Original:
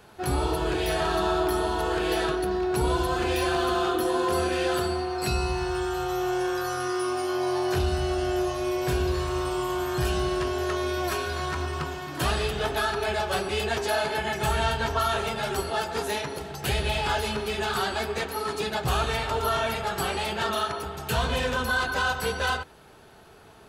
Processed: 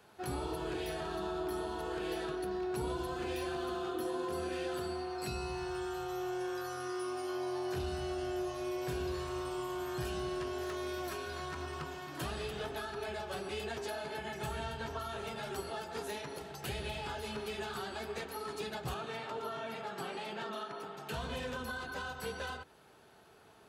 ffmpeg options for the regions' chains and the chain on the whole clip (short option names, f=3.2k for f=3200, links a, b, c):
-filter_complex "[0:a]asettb=1/sr,asplit=3[a][b][c];[a]atrim=end=10.614[d];[b]atrim=start=10.61:end=11.1,asetpts=PTS-STARTPTS,afade=t=in:d=0.004:c=qsin,afade=t=out:st=0.486:d=0.004:c=qsin,highshelf=f=7.8k:g=3.5,aeval=exprs='0.0794*(abs(mod(val(0)/0.0794+3,4)-2)-1)':c=same[e];[c]atrim=start=11.096[f];[d][e]acrossfade=d=0.004:c1=hsin:c2=qsin[g];[g][f]acrossfade=d=0.004:c1=qsin:c2=hsin,asettb=1/sr,asplit=3[h][i][j];[h]atrim=end=18.944[k];[i]atrim=start=18.94:end=21.14,asetpts=PTS-STARTPTS,afade=t=in:d=0.004:c=qsin,afade=t=out:st=2.196:d=0.004:c=qsin,highpass=f=140:w=0.5412,highpass=f=140:w=1.3066,highshelf=f=6.5k:g=-10.5[l];[j]atrim=start=21.136[m];[k][l]acrossfade=d=0.004:c1=hsin:c2=qsin[n];[n][m]acrossfade=d=0.004:c1=qsin:c2=hsin,highpass=f=130:p=1,acrossover=split=410[o][p];[p]acompressor=threshold=-31dB:ratio=6[q];[o][q]amix=inputs=2:normalize=0,volume=-8.5dB"